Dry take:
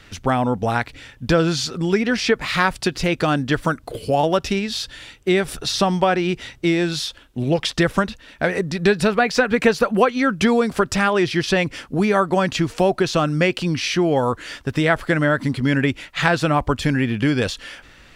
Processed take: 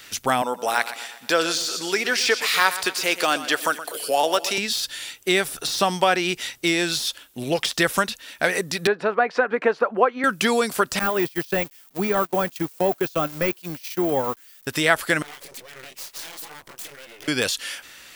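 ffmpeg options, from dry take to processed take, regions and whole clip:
ffmpeg -i in.wav -filter_complex "[0:a]asettb=1/sr,asplit=3[link_01][link_02][link_03];[link_01]atrim=end=0.424[link_04];[link_02]atrim=start=0.42:end=4.58,asetpts=PTS-STARTPTS,afade=type=in:duration=0.004:curve=qsin,afade=type=out:start_time=4.156:duration=0.004:curve=qsin,highpass=350,aecho=1:1:121|242|363|484|605:0.2|0.102|0.0519|0.0265|0.0135,atrim=end_sample=183456[link_05];[link_03]atrim=start=4.576[link_06];[link_04][link_05]acrossfade=duration=0.004:curve1=hsin:curve2=qsin[link_07];[link_07][link_06]acrossfade=duration=0.004:curve1=qsin:curve2=hsin,asettb=1/sr,asplit=3[link_08][link_09][link_10];[link_08]atrim=end=8.874[link_11];[link_09]atrim=start=8.87:end=10.24,asetpts=PTS-STARTPTS,afade=type=in:duration=0.004:curve=qsin,afade=type=out:start_time=1.366:duration=0.004:curve=qsin,asuperpass=centerf=600:order=4:qfactor=0.52,acompressor=mode=upward:threshold=-30dB:ratio=2.5:attack=3.2:release=140:knee=2.83:detection=peak[link_12];[link_10]atrim=start=10.236[link_13];[link_11][link_12]acrossfade=duration=0.004:curve1=hsin:curve2=qsin[link_14];[link_14][link_13]acrossfade=duration=0.004:curve1=qsin:curve2=hsin,asettb=1/sr,asplit=3[link_15][link_16][link_17];[link_15]atrim=end=10.994[link_18];[link_16]atrim=start=10.99:end=14.67,asetpts=PTS-STARTPTS,afade=type=in:duration=0.004:curve=qsin,afade=type=out:start_time=3.676:duration=0.004:curve=qsin,aeval=exprs='val(0)+0.5*0.0944*sgn(val(0))':channel_layout=same,agate=range=-37dB:threshold=-17dB:ratio=16:release=100:detection=peak[link_19];[link_17]atrim=start=14.666[link_20];[link_18][link_19]acrossfade=duration=0.004:curve1=hsin:curve2=qsin[link_21];[link_21][link_20]acrossfade=duration=0.004:curve1=qsin:curve2=hsin,asettb=1/sr,asplit=3[link_22][link_23][link_24];[link_22]atrim=end=15.224[link_25];[link_23]atrim=start=15.22:end=17.28,asetpts=PTS-STARTPTS,afade=type=in:duration=0.004:curve=qsin,afade=type=out:start_time=2.056:duration=0.004:curve=qsin,acompressor=threshold=-30dB:ratio=10:attack=3.2:release=140:knee=1:detection=peak,flanger=delay=19:depth=5.3:speed=2.2,aeval=exprs='abs(val(0))':channel_layout=same[link_26];[link_24]atrim=start=17.276[link_27];[link_25][link_26]acrossfade=duration=0.004:curve1=hsin:curve2=qsin[link_28];[link_28][link_27]acrossfade=duration=0.004:curve1=qsin:curve2=hsin,aemphasis=mode=production:type=riaa,deesser=0.4" out.wav

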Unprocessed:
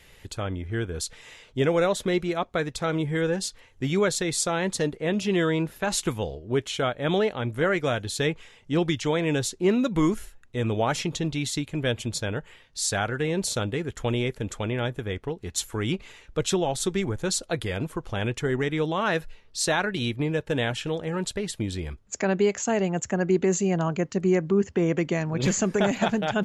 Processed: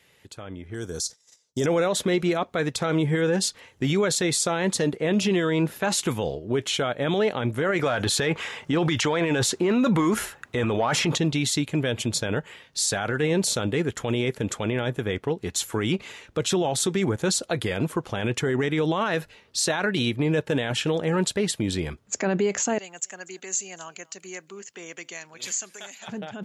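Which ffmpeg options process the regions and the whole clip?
ffmpeg -i in.wav -filter_complex "[0:a]asettb=1/sr,asplit=3[link_01][link_02][link_03];[link_01]atrim=end=0.744[link_04];[link_02]atrim=start=0.74:end=1.66,asetpts=PTS-STARTPTS,afade=type=in:duration=0.004:curve=qsin,afade=type=out:start_time=0.916:duration=0.004:curve=qsin,agate=range=-31dB:threshold=-44dB:ratio=16:release=100:detection=peak,acrossover=split=3100[link_05][link_06];[link_06]acompressor=threshold=-37dB:ratio=4:attack=1:release=60[link_07];[link_05][link_07]amix=inputs=2:normalize=0,highshelf=frequency=3900:width_type=q:width=3:gain=13.5[link_08];[link_03]atrim=start=1.656[link_09];[link_04][link_08]acrossfade=duration=0.004:curve1=hsin:curve2=qsin[link_10];[link_10][link_09]acrossfade=duration=0.004:curve1=qsin:curve2=hsin,asettb=1/sr,asplit=3[link_11][link_12][link_13];[link_11]atrim=end=7.794[link_14];[link_12]atrim=start=7.79:end=11.18,asetpts=PTS-STARTPTS,afade=type=in:duration=0.004:curve=qsin,afade=type=out:start_time=3.386:duration=0.004:curve=qsin,equalizer=frequency=1200:width_type=o:width=2.1:gain=7.5,acontrast=63[link_15];[link_13]atrim=start=11.176[link_16];[link_14][link_15]acrossfade=duration=0.004:curve1=hsin:curve2=qsin[link_17];[link_17][link_16]acrossfade=duration=0.004:curve1=qsin:curve2=hsin,asettb=1/sr,asplit=3[link_18][link_19][link_20];[link_18]atrim=end=22.784[link_21];[link_19]atrim=start=22.78:end=26.08,asetpts=PTS-STARTPTS,afade=type=in:duration=0.004:curve=qsin,afade=type=out:start_time=3.296:duration=0.004:curve=qsin,aderivative,aecho=1:1:241:0.0631,atrim=end_sample=145530[link_22];[link_20]atrim=start=26.076[link_23];[link_21][link_22]acrossfade=duration=0.004:curve1=hsin:curve2=qsin[link_24];[link_24][link_23]acrossfade=duration=0.004:curve1=qsin:curve2=hsin,highpass=120,alimiter=limit=-21.5dB:level=0:latency=1:release=31,dynaudnorm=framelen=230:gausssize=9:maxgain=12dB,volume=-5.5dB" out.wav

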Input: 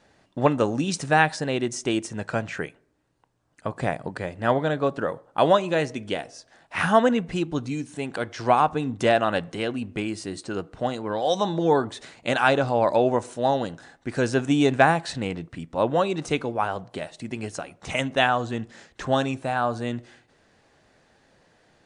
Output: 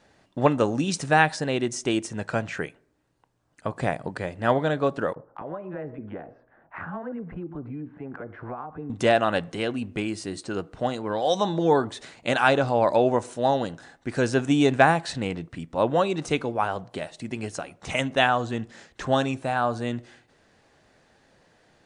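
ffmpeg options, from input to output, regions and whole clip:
ffmpeg -i in.wav -filter_complex "[0:a]asettb=1/sr,asplit=3[link_01][link_02][link_03];[link_01]atrim=end=5.134[link_04];[link_02]atrim=start=5.13:end=8.9,asetpts=PTS-STARTPTS,afade=type=in:duration=0.004:curve=qsin,afade=type=out:start_time=3.766:duration=0.004:curve=qsin,lowpass=frequency=1600:width=0.5412,lowpass=frequency=1600:width=1.3066,acompressor=threshold=-32dB:ratio=4:attack=3.2:release=140:knee=1:detection=peak,acrossover=split=780[link_05][link_06];[link_05]adelay=30[link_07];[link_07][link_06]amix=inputs=2:normalize=0,atrim=end_sample=166257[link_08];[link_03]atrim=start=8.896[link_09];[link_04][link_08]acrossfade=duration=0.004:curve1=hsin:curve2=qsin[link_10];[link_10][link_09]acrossfade=duration=0.004:curve1=qsin:curve2=hsin" out.wav

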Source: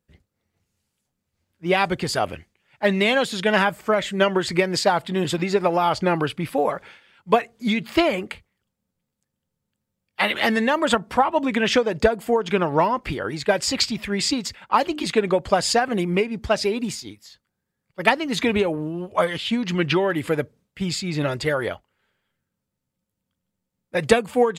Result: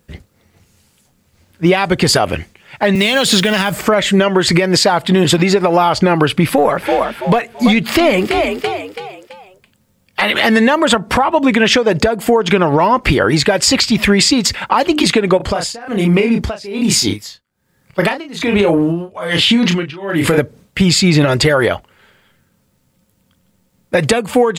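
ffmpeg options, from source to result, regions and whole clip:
ffmpeg -i in.wav -filter_complex "[0:a]asettb=1/sr,asplit=3[link_01][link_02][link_03];[link_01]atrim=end=2.954[link_04];[link_02]atrim=start=2.95:end=3.86,asetpts=PTS-STARTPTS,afade=type=in:duration=0.004:curve=qsin,afade=type=out:start_time=0.906:duration=0.004:curve=qsin,bandreject=frequency=870:width=19,acrossover=split=150|3000[link_05][link_06][link_07];[link_06]acompressor=threshold=-26dB:ratio=6:attack=3.2:release=140:knee=2.83:detection=peak[link_08];[link_05][link_08][link_07]amix=inputs=3:normalize=0,acrusher=bits=6:mode=log:mix=0:aa=0.000001[link_09];[link_03]atrim=start=3.856[link_10];[link_04][link_09]acrossfade=duration=0.004:curve1=hsin:curve2=qsin[link_11];[link_11][link_10]acrossfade=duration=0.004:curve1=qsin:curve2=hsin,asettb=1/sr,asplit=3[link_12][link_13][link_14];[link_12]atrim=end=6.444[link_15];[link_13]atrim=start=6.44:end=10.22,asetpts=PTS-STARTPTS,afade=type=in:duration=0.004:curve=qsin,afade=type=out:start_time=3.776:duration=0.004:curve=qsin,aeval=exprs='(tanh(2.51*val(0)+0.25)-tanh(0.25))/2.51':channel_layout=same,asplit=5[link_16][link_17][link_18][link_19][link_20];[link_17]adelay=332,afreqshift=47,volume=-13dB[link_21];[link_18]adelay=664,afreqshift=94,volume=-21.6dB[link_22];[link_19]adelay=996,afreqshift=141,volume=-30.3dB[link_23];[link_20]adelay=1328,afreqshift=188,volume=-38.9dB[link_24];[link_16][link_21][link_22][link_23][link_24]amix=inputs=5:normalize=0,atrim=end_sample=166698[link_25];[link_14]atrim=start=10.216[link_26];[link_15][link_25]acrossfade=duration=0.004:curve1=hsin:curve2=qsin[link_27];[link_27][link_26]acrossfade=duration=0.004:curve1=qsin:curve2=hsin,asettb=1/sr,asplit=3[link_28][link_29][link_30];[link_28]atrim=end=15.374[link_31];[link_29]atrim=start=15.37:end=20.38,asetpts=PTS-STARTPTS,afade=type=in:duration=0.004:curve=qsin,afade=type=out:start_time=5.006:duration=0.004:curve=qsin,asplit=2[link_32][link_33];[link_33]adelay=30,volume=-5.5dB[link_34];[link_32][link_34]amix=inputs=2:normalize=0,atrim=end_sample=220941,acompressor=threshold=-27dB:ratio=6:attack=3.2:release=140:knee=1:detection=peak,tremolo=f=1.2:d=0.93[link_35];[link_30]atrim=start=20.376[link_36];[link_31][link_35]acrossfade=duration=0.004:curve1=hsin:curve2=qsin[link_37];[link_37][link_36]acrossfade=duration=0.004:curve1=qsin:curve2=hsin,acompressor=threshold=-29dB:ratio=6,alimiter=level_in=22.5dB:limit=-1dB:release=50:level=0:latency=1,volume=-1dB" out.wav

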